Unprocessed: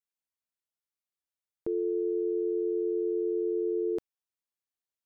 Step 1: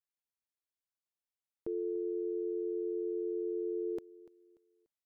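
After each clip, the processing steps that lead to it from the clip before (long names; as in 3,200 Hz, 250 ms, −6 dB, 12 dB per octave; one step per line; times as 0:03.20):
repeating echo 292 ms, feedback 33%, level −19 dB
level −6 dB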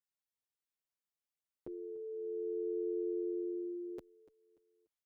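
barber-pole flanger 7.2 ms +0.45 Hz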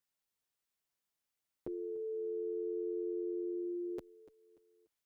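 downward compressor 3 to 1, threshold −42 dBFS, peak gain reduction 6.5 dB
level +5 dB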